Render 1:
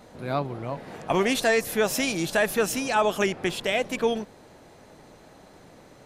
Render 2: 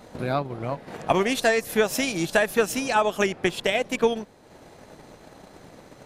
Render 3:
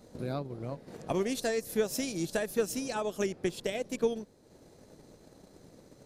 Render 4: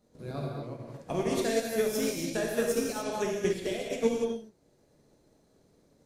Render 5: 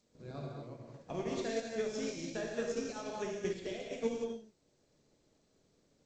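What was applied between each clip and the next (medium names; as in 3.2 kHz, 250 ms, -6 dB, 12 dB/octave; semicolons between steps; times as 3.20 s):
transient shaper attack +8 dB, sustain -6 dB; in parallel at +2 dB: peak limiter -21.5 dBFS, peak gain reduction 16.5 dB; on the sum: trim -4.5 dB
high-order bell 1.5 kHz -8.5 dB 2.6 oct; trim -6.5 dB
gated-style reverb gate 310 ms flat, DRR -3.5 dB; upward expansion 1.5:1, over -49 dBFS
trim -8 dB; G.722 64 kbps 16 kHz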